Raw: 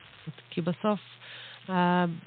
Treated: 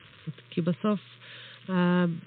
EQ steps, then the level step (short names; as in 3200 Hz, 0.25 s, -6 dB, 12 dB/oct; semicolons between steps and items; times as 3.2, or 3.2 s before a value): HPF 79 Hz; Butterworth band-stop 770 Hz, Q 2.2; low shelf 470 Hz +5.5 dB; -1.5 dB